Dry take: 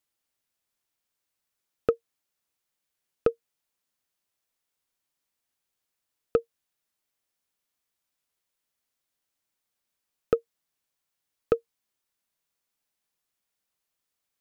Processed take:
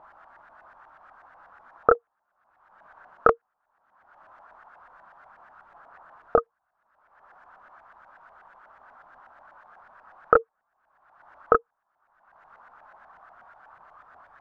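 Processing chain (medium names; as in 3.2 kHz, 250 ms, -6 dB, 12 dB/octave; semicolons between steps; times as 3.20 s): high-order bell 1 kHz +13.5 dB; upward compressor, threshold -33 dBFS; chorus voices 6, 1.4 Hz, delay 28 ms, depth 3 ms; LFO low-pass saw up 8.2 Hz 760–1800 Hz; trim +3 dB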